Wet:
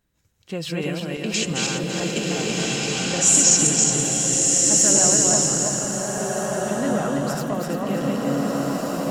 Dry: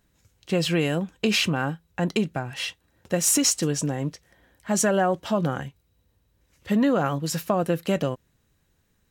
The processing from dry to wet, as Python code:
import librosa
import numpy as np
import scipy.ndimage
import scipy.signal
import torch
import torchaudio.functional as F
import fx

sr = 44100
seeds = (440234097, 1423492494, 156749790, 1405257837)

y = fx.reverse_delay_fb(x, sr, ms=167, feedback_pct=65, wet_db=-1)
y = fx.lowpass_res(y, sr, hz=7300.0, q=6.6, at=(1.34, 4.03))
y = fx.rev_bloom(y, sr, seeds[0], attack_ms=1590, drr_db=-2.0)
y = y * 10.0 ** (-6.0 / 20.0)